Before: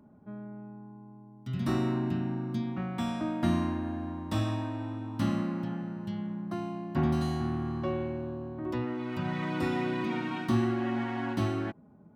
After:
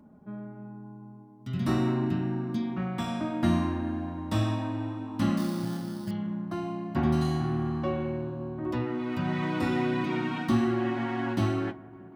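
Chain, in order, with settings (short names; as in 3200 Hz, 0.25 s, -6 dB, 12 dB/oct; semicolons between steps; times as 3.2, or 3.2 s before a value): on a send: dark delay 0.187 s, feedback 75%, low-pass 1400 Hz, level -20 dB; on the sum: flange 0.38 Hz, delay 3.6 ms, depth 8.8 ms, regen -60%; 5.37–6.11 sample-rate reducer 4800 Hz, jitter 0%; gain +6.5 dB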